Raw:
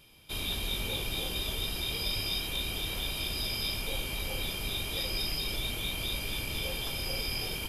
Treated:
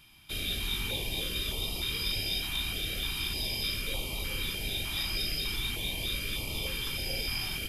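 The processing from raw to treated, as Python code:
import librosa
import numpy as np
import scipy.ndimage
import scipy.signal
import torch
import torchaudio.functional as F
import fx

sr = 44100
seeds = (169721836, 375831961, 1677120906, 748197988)

y = fx.peak_eq(x, sr, hz=1600.0, db=3.5, octaves=1.8)
y = fx.filter_held_notch(y, sr, hz=3.3, low_hz=490.0, high_hz=1600.0)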